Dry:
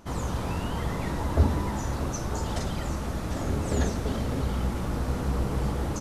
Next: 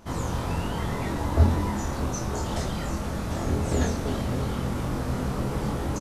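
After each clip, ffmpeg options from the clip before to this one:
-filter_complex "[0:a]asplit=2[s0][s1];[s1]adelay=24,volume=0.708[s2];[s0][s2]amix=inputs=2:normalize=0"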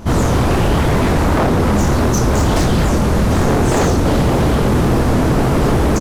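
-filter_complex "[0:a]lowshelf=f=380:g=8,asplit=2[s0][s1];[s1]alimiter=limit=0.316:level=0:latency=1:release=452,volume=1.12[s2];[s0][s2]amix=inputs=2:normalize=0,aeval=exprs='0.178*(abs(mod(val(0)/0.178+3,4)-2)-1)':c=same,volume=2.11"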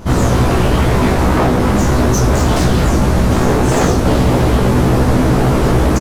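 -filter_complex "[0:a]asplit=2[s0][s1];[s1]adelay=16,volume=0.631[s2];[s0][s2]amix=inputs=2:normalize=0"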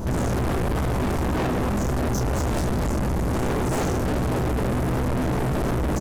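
-af "equalizer=f=2600:w=0.55:g=-10.5,alimiter=limit=0.316:level=0:latency=1:release=170,asoftclip=type=tanh:threshold=0.0422,volume=1.88"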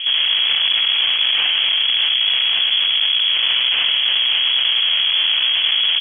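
-af "lowpass=f=2900:t=q:w=0.5098,lowpass=f=2900:t=q:w=0.6013,lowpass=f=2900:t=q:w=0.9,lowpass=f=2900:t=q:w=2.563,afreqshift=-3400,volume=2"

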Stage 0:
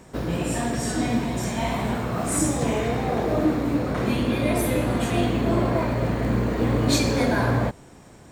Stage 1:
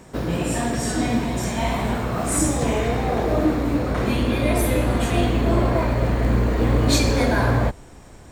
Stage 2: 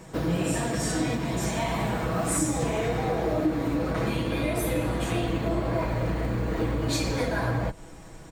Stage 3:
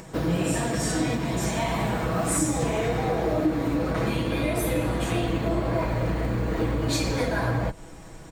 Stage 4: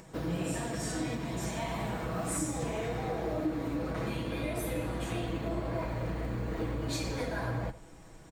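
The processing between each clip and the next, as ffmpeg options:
-af "asubboost=boost=3.5:cutoff=74,volume=1.33"
-af "flanger=delay=4.7:depth=9.5:regen=-49:speed=1.7:shape=triangular,acompressor=threshold=0.0501:ratio=6,aecho=1:1:6.2:0.51,volume=1.33"
-af "acompressor=mode=upward:threshold=0.00708:ratio=2.5,volume=1.19"
-af "aecho=1:1:83:0.168,volume=0.355"

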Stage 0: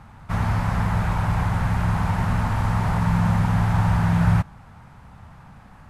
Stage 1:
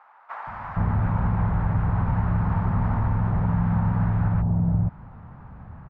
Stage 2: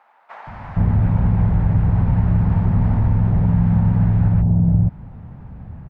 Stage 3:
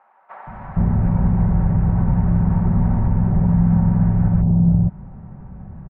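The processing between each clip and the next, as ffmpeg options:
-filter_complex "[0:a]lowpass=1200,acompressor=threshold=0.0794:ratio=6,acrossover=split=730[s0][s1];[s0]adelay=470[s2];[s2][s1]amix=inputs=2:normalize=0,volume=1.5"
-af "equalizer=f=1200:t=o:w=1.4:g=-12.5,volume=2.24"
-af "lowpass=1600,aecho=1:1:5.3:0.39"

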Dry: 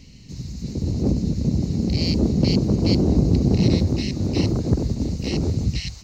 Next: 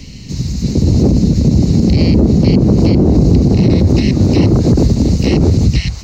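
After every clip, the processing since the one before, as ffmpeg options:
-filter_complex "[0:a]acrossover=split=130|2300[s0][s1][s2];[s2]acompressor=threshold=0.00891:ratio=6[s3];[s0][s1][s3]amix=inputs=3:normalize=0,alimiter=level_in=5.62:limit=0.891:release=50:level=0:latency=1,volume=0.891"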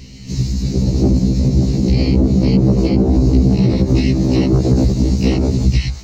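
-af "dynaudnorm=f=120:g=5:m=3.76,afftfilt=real='re*1.73*eq(mod(b,3),0)':imag='im*1.73*eq(mod(b,3),0)':win_size=2048:overlap=0.75,volume=0.75"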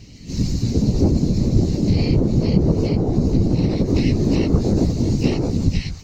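-af "dynaudnorm=f=240:g=3:m=3.76,afftfilt=real='hypot(re,im)*cos(2*PI*random(0))':imag='hypot(re,im)*sin(2*PI*random(1))':win_size=512:overlap=0.75"

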